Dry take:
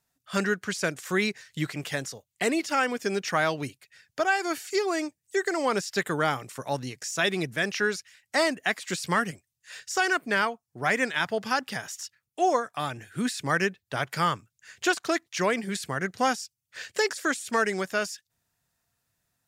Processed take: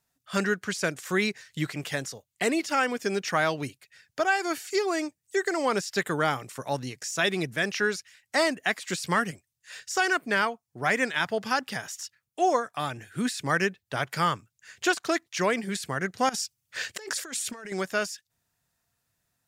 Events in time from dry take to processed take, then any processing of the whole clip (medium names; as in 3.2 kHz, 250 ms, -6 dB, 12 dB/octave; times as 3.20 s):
16.29–17.72 s: compressor with a negative ratio -36 dBFS